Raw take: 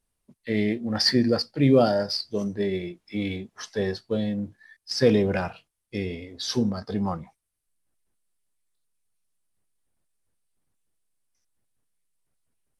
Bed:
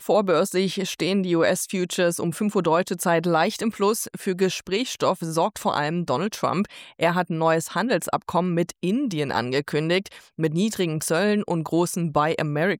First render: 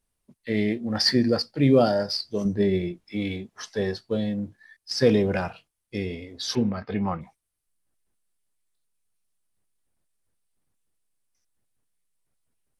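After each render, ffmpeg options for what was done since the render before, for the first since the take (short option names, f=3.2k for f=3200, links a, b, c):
-filter_complex "[0:a]asettb=1/sr,asplit=3[a][b][c];[a]atrim=end=2.454[d];[b]atrim=start=2.45:end=3.04,asetpts=PTS-STARTPTS,afade=t=in:d=0.004:c=qsin,afade=t=out:st=0.586:d=0.004:c=qsin,lowshelf=f=330:g=8[e];[c]atrim=start=3.036[f];[d][e]acrossfade=d=0.004:c1=hsin:c2=qsin[g];[g][f]acrossfade=d=0.004:c1=qsin:c2=hsin,asettb=1/sr,asplit=3[h][i][j];[h]atrim=end=6.554[k];[i]atrim=start=6.55:end=7.21,asetpts=PTS-STARTPTS,afade=t=in:d=0.004:c=qsin,afade=t=out:st=0.656:d=0.004:c=qsin,lowpass=f=2.4k:t=q:w=4.3[l];[j]atrim=start=7.206[m];[k][l]acrossfade=d=0.004:c1=hsin:c2=qsin[n];[n][m]acrossfade=d=0.004:c1=qsin:c2=hsin"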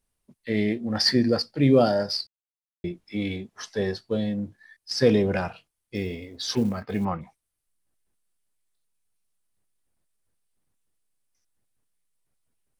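-filter_complex "[0:a]asettb=1/sr,asplit=3[a][b][c];[a]atrim=end=5.954[d];[b]atrim=start=5.95:end=7.05,asetpts=PTS-STARTPTS,afade=t=in:d=0.004:c=qsin,afade=t=out:st=1.096:d=0.004:c=qsin,acrusher=bits=8:mode=log:mix=0:aa=0.000001[e];[c]atrim=start=7.046[f];[d][e]acrossfade=d=0.004:c1=hsin:c2=qsin[g];[g][f]acrossfade=d=0.004:c1=qsin:c2=hsin,asplit=3[h][i][j];[h]atrim=end=2.27,asetpts=PTS-STARTPTS,afade=t=out:st=2.266:d=0.004:c=hsin[k];[i]atrim=start=2.27:end=2.84,asetpts=PTS-STARTPTS,volume=0[l];[j]atrim=start=2.84,asetpts=PTS-STARTPTS,afade=t=in:d=0.004:c=hsin[m];[k][l][m]concat=n=3:v=0:a=1"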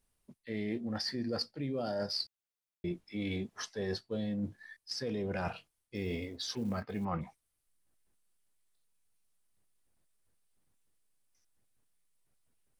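-af "alimiter=limit=-14.5dB:level=0:latency=1:release=64,areverse,acompressor=threshold=-32dB:ratio=16,areverse"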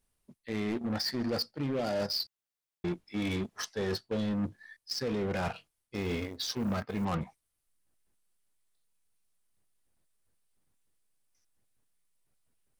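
-filter_complex "[0:a]asplit=2[a][b];[b]acrusher=bits=5:mix=0:aa=0.5,volume=-4dB[c];[a][c]amix=inputs=2:normalize=0,asoftclip=type=hard:threshold=-27dB"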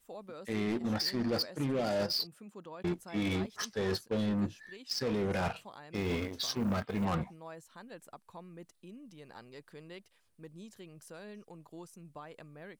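-filter_complex "[1:a]volume=-27dB[a];[0:a][a]amix=inputs=2:normalize=0"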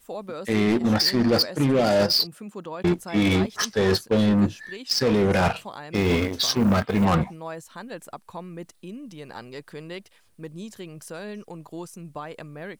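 -af "volume=12dB"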